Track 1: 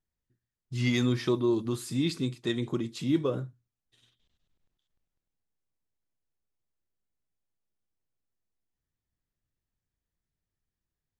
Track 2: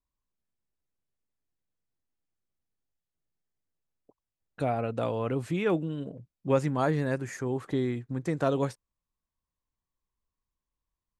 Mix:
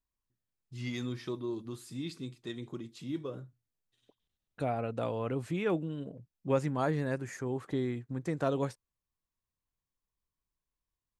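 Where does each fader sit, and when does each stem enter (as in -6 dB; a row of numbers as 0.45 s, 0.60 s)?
-10.5 dB, -4.0 dB; 0.00 s, 0.00 s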